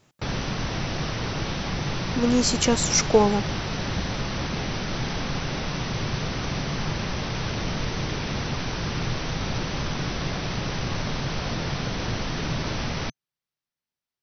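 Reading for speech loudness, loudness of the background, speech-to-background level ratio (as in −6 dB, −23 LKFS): −22.0 LKFS, −29.0 LKFS, 7.0 dB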